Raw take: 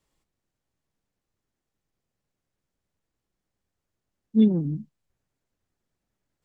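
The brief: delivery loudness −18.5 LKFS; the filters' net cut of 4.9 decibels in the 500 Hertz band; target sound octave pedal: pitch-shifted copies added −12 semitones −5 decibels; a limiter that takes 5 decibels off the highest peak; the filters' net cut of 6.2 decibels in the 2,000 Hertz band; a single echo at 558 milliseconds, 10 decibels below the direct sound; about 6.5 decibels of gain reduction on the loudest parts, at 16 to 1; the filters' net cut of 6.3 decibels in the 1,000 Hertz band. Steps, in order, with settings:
parametric band 500 Hz −5.5 dB
parametric band 1,000 Hz −5 dB
parametric band 2,000 Hz −6.5 dB
downward compressor 16 to 1, threshold −20 dBFS
brickwall limiter −21.5 dBFS
single-tap delay 558 ms −10 dB
pitch-shifted copies added −12 semitones −5 dB
level +13.5 dB

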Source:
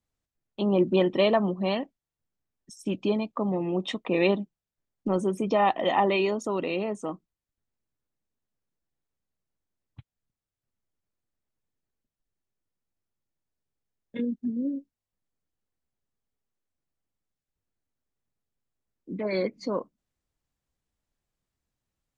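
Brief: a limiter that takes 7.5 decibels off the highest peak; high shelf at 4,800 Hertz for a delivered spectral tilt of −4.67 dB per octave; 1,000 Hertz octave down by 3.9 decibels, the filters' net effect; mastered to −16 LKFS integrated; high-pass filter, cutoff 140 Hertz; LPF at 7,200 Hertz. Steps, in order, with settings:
high-pass filter 140 Hz
low-pass filter 7,200 Hz
parametric band 1,000 Hz −5.5 dB
high-shelf EQ 4,800 Hz +4 dB
level +14 dB
brickwall limiter −4 dBFS

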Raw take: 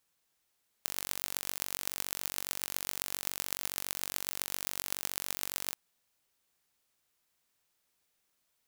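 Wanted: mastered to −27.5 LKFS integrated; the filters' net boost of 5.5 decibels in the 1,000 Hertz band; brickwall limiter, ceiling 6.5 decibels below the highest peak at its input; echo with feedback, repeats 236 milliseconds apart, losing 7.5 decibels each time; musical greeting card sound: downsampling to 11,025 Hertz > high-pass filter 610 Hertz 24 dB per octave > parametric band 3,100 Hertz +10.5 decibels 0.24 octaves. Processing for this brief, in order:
parametric band 1,000 Hz +7 dB
brickwall limiter −10.5 dBFS
repeating echo 236 ms, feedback 42%, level −7.5 dB
downsampling to 11,025 Hz
high-pass filter 610 Hz 24 dB per octave
parametric band 3,100 Hz +10.5 dB 0.24 octaves
level +13.5 dB

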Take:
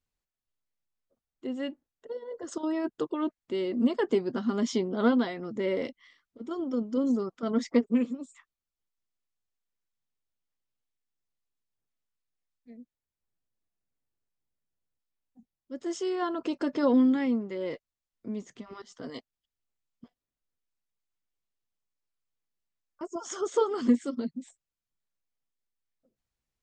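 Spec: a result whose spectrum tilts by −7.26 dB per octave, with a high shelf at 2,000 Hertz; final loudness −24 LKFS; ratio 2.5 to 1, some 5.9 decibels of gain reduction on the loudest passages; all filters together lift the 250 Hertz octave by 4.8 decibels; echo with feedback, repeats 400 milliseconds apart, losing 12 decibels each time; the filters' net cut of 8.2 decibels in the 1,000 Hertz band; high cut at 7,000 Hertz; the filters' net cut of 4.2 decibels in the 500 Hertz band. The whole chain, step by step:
low-pass filter 7,000 Hz
parametric band 250 Hz +7 dB
parametric band 500 Hz −6.5 dB
parametric band 1,000 Hz −7.5 dB
high-shelf EQ 2,000 Hz −6.5 dB
downward compressor 2.5 to 1, threshold −22 dBFS
repeating echo 400 ms, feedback 25%, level −12 dB
level +5.5 dB

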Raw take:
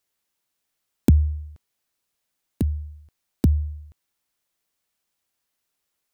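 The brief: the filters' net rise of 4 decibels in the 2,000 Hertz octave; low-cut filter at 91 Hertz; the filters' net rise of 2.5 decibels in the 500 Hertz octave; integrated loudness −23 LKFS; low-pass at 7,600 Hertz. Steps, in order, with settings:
high-pass filter 91 Hz
low-pass filter 7,600 Hz
parametric band 500 Hz +3.5 dB
parametric band 2,000 Hz +5 dB
level +3 dB

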